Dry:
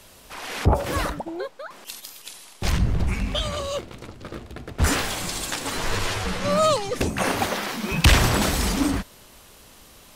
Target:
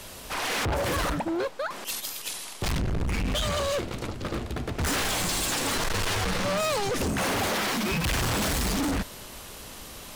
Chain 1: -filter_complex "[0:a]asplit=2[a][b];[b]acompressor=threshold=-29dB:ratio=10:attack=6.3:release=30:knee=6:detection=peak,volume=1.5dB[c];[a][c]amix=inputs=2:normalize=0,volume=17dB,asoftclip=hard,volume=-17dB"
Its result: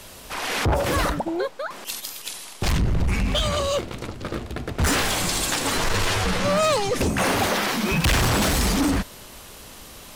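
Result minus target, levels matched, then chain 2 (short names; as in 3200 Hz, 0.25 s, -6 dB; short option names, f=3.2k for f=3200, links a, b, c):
overloaded stage: distortion -6 dB
-filter_complex "[0:a]asplit=2[a][b];[b]acompressor=threshold=-29dB:ratio=10:attack=6.3:release=30:knee=6:detection=peak,volume=1.5dB[c];[a][c]amix=inputs=2:normalize=0,volume=25dB,asoftclip=hard,volume=-25dB"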